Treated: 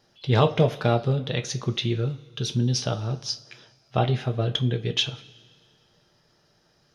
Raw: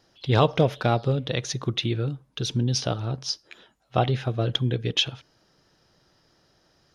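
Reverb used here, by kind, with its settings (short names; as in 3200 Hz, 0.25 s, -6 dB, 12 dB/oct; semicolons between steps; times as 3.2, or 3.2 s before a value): two-slope reverb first 0.22 s, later 1.9 s, from -21 dB, DRR 6 dB; gain -1.5 dB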